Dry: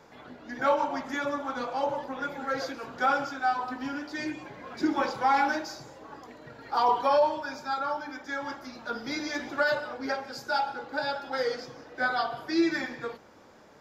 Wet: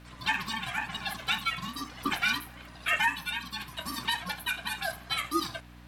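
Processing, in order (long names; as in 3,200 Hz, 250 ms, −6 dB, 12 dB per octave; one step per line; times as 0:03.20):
change of speed 2.35×
ring modulation 450 Hz
hum with harmonics 60 Hz, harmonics 5, −51 dBFS −4 dB per octave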